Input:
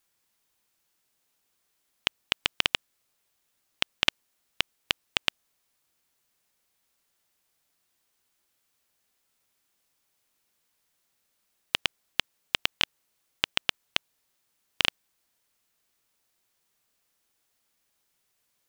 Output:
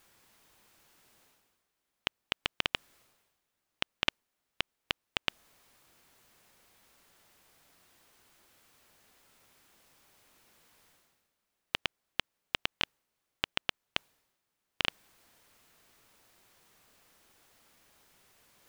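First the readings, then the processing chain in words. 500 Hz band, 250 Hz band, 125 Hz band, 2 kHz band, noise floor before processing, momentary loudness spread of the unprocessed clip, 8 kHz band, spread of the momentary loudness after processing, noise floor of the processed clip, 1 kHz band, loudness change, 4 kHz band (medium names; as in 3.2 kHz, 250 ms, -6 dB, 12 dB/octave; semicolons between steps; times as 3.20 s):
-2.5 dB, -2.5 dB, -2.5 dB, -5.5 dB, -76 dBFS, 6 LU, -9.0 dB, 6 LU, -84 dBFS, -3.5 dB, -6.5 dB, -7.0 dB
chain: treble shelf 3 kHz -8.5 dB; reverse; upward compressor, threshold -46 dBFS; reverse; trim -2.5 dB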